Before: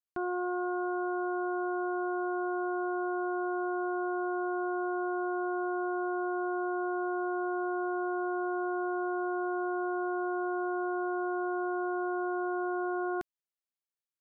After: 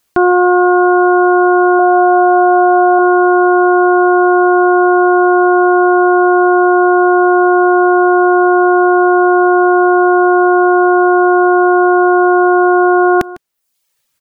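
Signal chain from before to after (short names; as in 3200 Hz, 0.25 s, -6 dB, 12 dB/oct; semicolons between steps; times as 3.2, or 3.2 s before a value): reverb removal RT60 0.75 s; 1.79–2.99 bell 640 Hz +14 dB 0.32 oct; echo 0.152 s -22.5 dB; maximiser +33 dB; gain -2 dB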